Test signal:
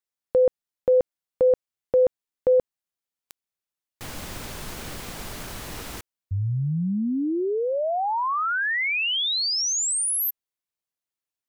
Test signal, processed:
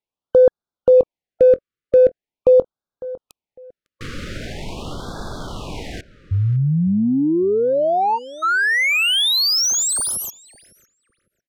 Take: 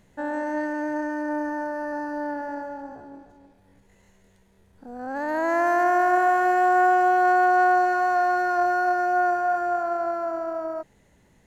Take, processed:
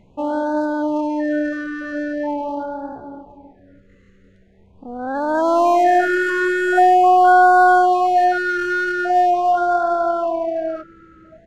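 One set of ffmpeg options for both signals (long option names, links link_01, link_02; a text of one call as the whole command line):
ffmpeg -i in.wav -filter_complex "[0:a]adynamicsmooth=sensitivity=7:basefreq=3000,asplit=2[link_01][link_02];[link_02]adelay=553,lowpass=frequency=2400:poles=1,volume=-17.5dB,asplit=2[link_03][link_04];[link_04]adelay=553,lowpass=frequency=2400:poles=1,volume=0.25[link_05];[link_01][link_03][link_05]amix=inputs=3:normalize=0,afftfilt=real='re*(1-between(b*sr/1024,780*pow(2400/780,0.5+0.5*sin(2*PI*0.43*pts/sr))/1.41,780*pow(2400/780,0.5+0.5*sin(2*PI*0.43*pts/sr))*1.41))':imag='im*(1-between(b*sr/1024,780*pow(2400/780,0.5+0.5*sin(2*PI*0.43*pts/sr))/1.41,780*pow(2400/780,0.5+0.5*sin(2*PI*0.43*pts/sr))*1.41))':win_size=1024:overlap=0.75,volume=7.5dB" out.wav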